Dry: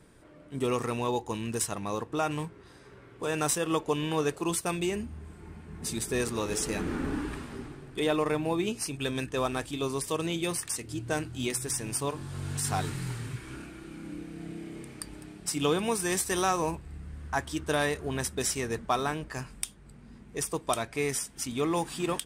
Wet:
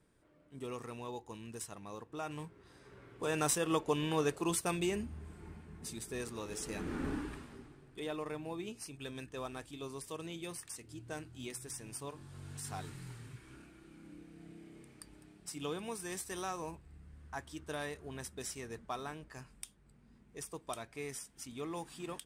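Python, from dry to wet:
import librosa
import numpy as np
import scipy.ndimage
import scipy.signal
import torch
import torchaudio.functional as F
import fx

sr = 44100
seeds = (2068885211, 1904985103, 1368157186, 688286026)

y = fx.gain(x, sr, db=fx.line((2.05, -14.0), (3.02, -4.0), (5.48, -4.0), (5.96, -11.5), (6.56, -11.5), (7.08, -5.0), (7.65, -13.0)))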